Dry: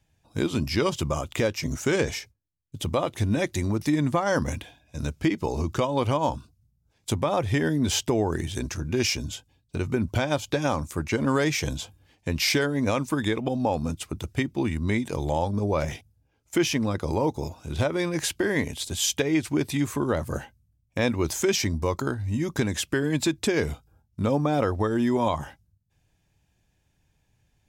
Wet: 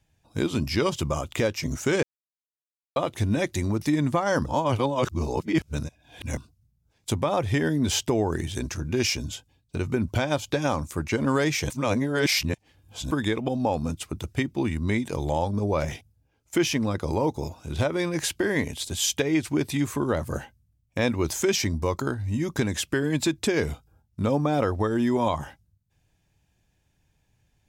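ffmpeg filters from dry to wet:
ffmpeg -i in.wav -filter_complex "[0:a]asplit=7[link_01][link_02][link_03][link_04][link_05][link_06][link_07];[link_01]atrim=end=2.03,asetpts=PTS-STARTPTS,afade=type=out:start_time=2.026:duration=0.004:curve=hsin[link_08];[link_02]atrim=start=2.03:end=2.96,asetpts=PTS-STARTPTS,volume=0[link_09];[link_03]atrim=start=2.96:end=4.462,asetpts=PTS-STARTPTS,afade=type=in:duration=0.004:curve=hsin[link_10];[link_04]atrim=start=4.458:end=6.372,asetpts=PTS-STARTPTS,areverse[link_11];[link_05]atrim=start=6.368:end=11.702[link_12];[link_06]atrim=start=11.698:end=13.112,asetpts=PTS-STARTPTS,areverse[link_13];[link_07]atrim=start=13.108[link_14];[link_08][link_09][link_10]concat=n=3:v=0:a=1[link_15];[link_15][link_11]acrossfade=duration=0.004:curve1=hsin:curve2=hsin[link_16];[link_16][link_12]acrossfade=duration=0.004:curve1=hsin:curve2=hsin[link_17];[link_17][link_13]acrossfade=duration=0.004:curve1=hsin:curve2=hsin[link_18];[link_18][link_14]acrossfade=duration=0.004:curve1=hsin:curve2=hsin" out.wav

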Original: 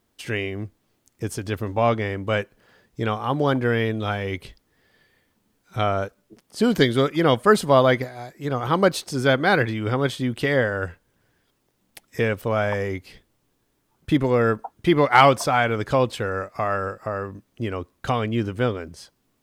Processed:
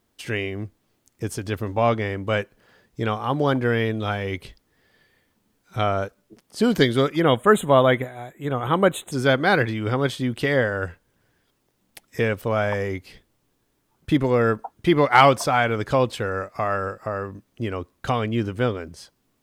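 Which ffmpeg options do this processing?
ffmpeg -i in.wav -filter_complex "[0:a]asplit=3[link_01][link_02][link_03];[link_01]afade=type=out:start_time=7.19:duration=0.02[link_04];[link_02]asuperstop=centerf=5100:order=12:qfactor=1.8,afade=type=in:start_time=7.19:duration=0.02,afade=type=out:start_time=9.11:duration=0.02[link_05];[link_03]afade=type=in:start_time=9.11:duration=0.02[link_06];[link_04][link_05][link_06]amix=inputs=3:normalize=0" out.wav

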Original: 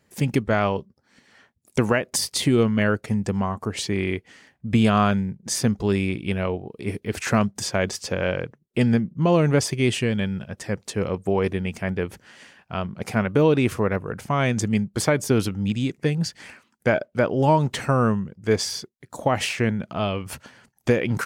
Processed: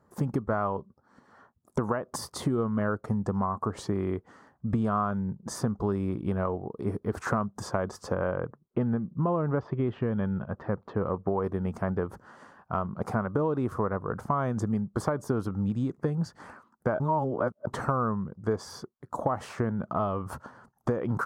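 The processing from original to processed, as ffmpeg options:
ffmpeg -i in.wav -filter_complex "[0:a]asettb=1/sr,asplit=3[link_01][link_02][link_03];[link_01]atrim=end=8.144[link_04];[link_02]atrim=start=8.14:end=11.42,asetpts=PTS-STARTPTS,afade=type=in:duration=0.004:curve=qsin,afade=type=out:start_time=3.276:duration=0.004:curve=qsin,lowpass=frequency=3300:width=0.5412,lowpass=frequency=3300:width=1.3066[link_05];[link_03]atrim=start=11.416[link_06];[link_04][link_05]acrossfade=duration=0.004:curve1=hsin:curve2=qsin[link_07];[link_07][link_06]acrossfade=duration=0.004:curve1=qsin:curve2=hsin,asplit=3[link_08][link_09][link_10];[link_08]atrim=end=17.002[link_11];[link_09]atrim=start=16.998:end=17.672,asetpts=PTS-STARTPTS,areverse[link_12];[link_10]atrim=start=17.668[link_13];[link_11][link_12]acrossfade=duration=0.004:curve1=hsin:curve2=hsin[link_14];[link_14][link_13]acrossfade=duration=0.004:curve1=hsin:curve2=hsin,highshelf=frequency=1700:width_type=q:width=3:gain=-12.5,acompressor=threshold=-25dB:ratio=5" out.wav

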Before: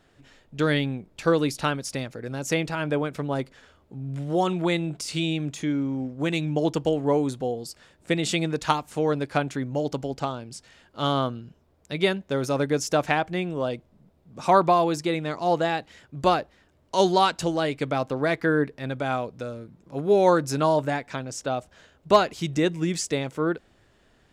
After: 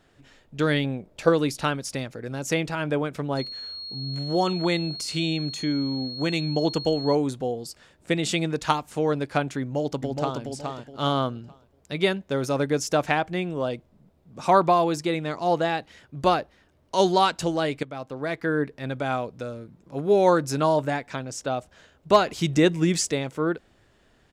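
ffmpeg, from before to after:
ffmpeg -i in.wav -filter_complex "[0:a]asettb=1/sr,asplit=3[link_01][link_02][link_03];[link_01]atrim=end=0.844[link_04];[link_02]atrim=start=0.84:end=1.29,asetpts=PTS-STARTPTS,afade=type=in:duration=0.004:curve=qsin,afade=type=out:start_time=0.446:duration=0.004:curve=qsin,equalizer=frequency=580:width=1.9:gain=8.5[link_05];[link_03]atrim=start=1.286[link_06];[link_04][link_05]acrossfade=duration=0.004:curve1=hsin:curve2=qsin[link_07];[link_07][link_06]acrossfade=duration=0.004:curve1=qsin:curve2=hsin,asettb=1/sr,asplit=3[link_08][link_09][link_10];[link_08]atrim=end=3.374[link_11];[link_09]atrim=start=3.37:end=7.15,asetpts=PTS-STARTPTS,afade=type=in:duration=0.004:curve=qsin,afade=type=out:start_time=3.776:duration=0.004:curve=qsin,aeval=exprs='val(0)+0.02*sin(2*PI*4300*n/s)':channel_layout=same[link_12];[link_10]atrim=start=7.146[link_13];[link_11][link_12]acrossfade=duration=0.004:curve1=hsin:curve2=qsin[link_14];[link_14][link_13]acrossfade=duration=0.004:curve1=qsin:curve2=hsin,asplit=2[link_15][link_16];[link_16]afade=type=in:start_time=9.6:duration=0.01,afade=type=out:start_time=10.41:duration=0.01,aecho=0:1:420|840|1260|1680:0.595662|0.178699|0.0536096|0.0160829[link_17];[link_15][link_17]amix=inputs=2:normalize=0,asettb=1/sr,asplit=3[link_18][link_19][link_20];[link_18]atrim=end=15.474[link_21];[link_19]atrim=start=15.47:end=17.01,asetpts=PTS-STARTPTS,afade=type=in:duration=0.004:curve=qsin,afade=type=out:start_time=1.536:duration=0.004:curve=qsin,bandreject=frequency=7400:width=13[link_22];[link_20]atrim=start=17.006[link_23];[link_21][link_22]acrossfade=duration=0.004:curve1=hsin:curve2=qsin[link_24];[link_24][link_23]acrossfade=duration=0.004:curve1=qsin:curve2=hsin,asplit=4[link_25][link_26][link_27][link_28];[link_25]atrim=end=17.83,asetpts=PTS-STARTPTS,afade=type=out:start_time=17.826:duration=0.004:curve=hsin:silence=0.223872[link_29];[link_26]atrim=start=17.83:end=22.272,asetpts=PTS-STARTPTS,afade=type=in:duration=1.04:silence=0.223872[link_30];[link_27]atrim=start=22.268:end=23.112,asetpts=PTS-STARTPTS,volume=4dB[link_31];[link_28]atrim=start=23.108[link_32];[link_29][link_30]concat=n=2:v=0:a=1[link_33];[link_33][link_31]acrossfade=duration=0.004:curve1=hsin:curve2=hsin[link_34];[link_34][link_32]acrossfade=duration=0.004:curve1=hsin:curve2=hsin" out.wav

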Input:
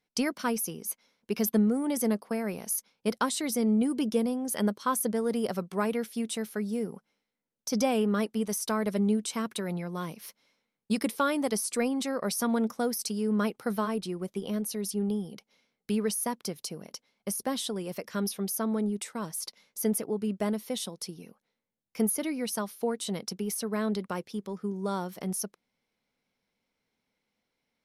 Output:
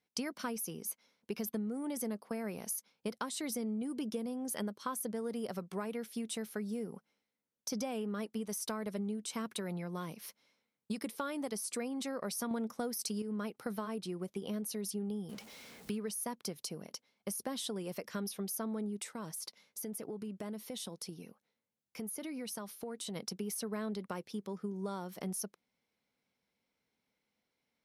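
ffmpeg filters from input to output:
ffmpeg -i in.wav -filter_complex "[0:a]asettb=1/sr,asplit=3[link_01][link_02][link_03];[link_01]atrim=end=15.294[link_04];[link_02]atrim=start=15.29:end=15.98,asetpts=PTS-STARTPTS,afade=type=in:duration=0.004:curve=qsin,afade=type=out:start_time=0.686:duration=0.004:curve=qsin,aeval=exprs='val(0)+0.5*0.00596*sgn(val(0))':channel_layout=same[link_05];[link_03]atrim=start=15.976[link_06];[link_04][link_05]acrossfade=duration=0.004:curve1=hsin:curve2=qsin[link_07];[link_07][link_06]acrossfade=duration=0.004:curve1=qsin:curve2=hsin,asplit=3[link_08][link_09][link_10];[link_08]afade=type=out:start_time=19.06:duration=0.02[link_11];[link_09]acompressor=threshold=-35dB:ratio=6:attack=3.2:release=140:knee=1:detection=peak,afade=type=in:start_time=19.06:duration=0.02,afade=type=out:start_time=23.15:duration=0.02[link_12];[link_10]afade=type=in:start_time=23.15:duration=0.02[link_13];[link_11][link_12][link_13]amix=inputs=3:normalize=0,asplit=3[link_14][link_15][link_16];[link_14]atrim=end=12.512[link_17];[link_15]atrim=start=12.508:end=13.222,asetpts=PTS-STARTPTS,volume=8dB[link_18];[link_16]atrim=start=13.218[link_19];[link_17][link_18]acrossfade=duration=0.004:curve1=hsin:curve2=hsin[link_20];[link_20][link_19]acrossfade=duration=0.004:curve1=hsin:curve2=hsin,highpass=47,acompressor=threshold=-32dB:ratio=6,volume=-3dB" out.wav

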